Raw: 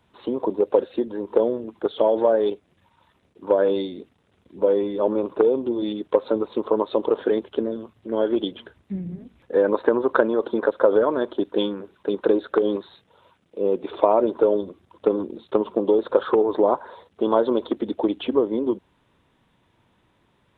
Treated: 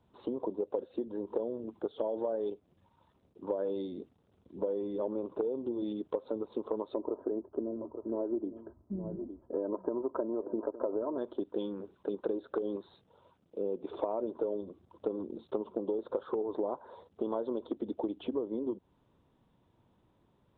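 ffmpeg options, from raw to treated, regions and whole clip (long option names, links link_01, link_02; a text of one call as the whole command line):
ffmpeg -i in.wav -filter_complex "[0:a]asettb=1/sr,asplit=3[link_01][link_02][link_03];[link_01]atrim=end=6.944[link_04];[link_02]atrim=start=6.94:end=11.18,asetpts=PTS-STARTPTS,afade=type=in:duration=0.004:curve=qsin,afade=type=out:start_time=4.236:duration=0.004:curve=qsin,lowpass=frequency=1200:width=0.5412,lowpass=frequency=1200:width=1.3066,aecho=1:1:3.1:0.45,atrim=end_sample=186984,aecho=1:1:864:0.15,atrim=end_sample=186984[link_05];[link_03]atrim=start=11.176[link_06];[link_04][link_05]acrossfade=duration=0.004:curve1=hsin:curve2=qsin[link_07];[link_07][link_06]acrossfade=duration=0.004:curve1=qsin:curve2=hsin,lowpass=frequency=2800:poles=1,equalizer=frequency=2000:width=0.91:gain=-10.5,acompressor=threshold=-29dB:ratio=3,volume=-4dB" out.wav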